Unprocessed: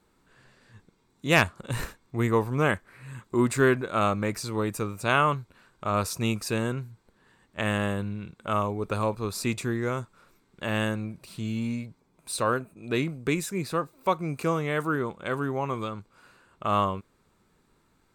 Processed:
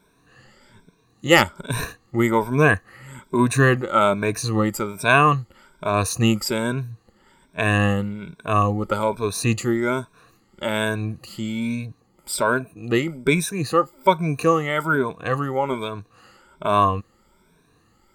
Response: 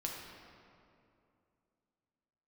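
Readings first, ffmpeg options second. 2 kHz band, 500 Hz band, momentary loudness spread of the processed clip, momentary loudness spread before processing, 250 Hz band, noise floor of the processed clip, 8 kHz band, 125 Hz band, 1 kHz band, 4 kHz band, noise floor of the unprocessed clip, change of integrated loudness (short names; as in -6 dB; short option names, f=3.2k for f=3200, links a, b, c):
+7.5 dB, +6.0 dB, 13 LU, 13 LU, +6.0 dB, -61 dBFS, +7.0 dB, +6.5 dB, +7.0 dB, +7.0 dB, -67 dBFS, +6.5 dB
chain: -af "afftfilt=real='re*pow(10,16/40*sin(2*PI*(1.6*log(max(b,1)*sr/1024/100)/log(2)-(1.2)*(pts-256)/sr)))':imag='im*pow(10,16/40*sin(2*PI*(1.6*log(max(b,1)*sr/1024/100)/log(2)-(1.2)*(pts-256)/sr)))':win_size=1024:overlap=0.75,volume=4dB"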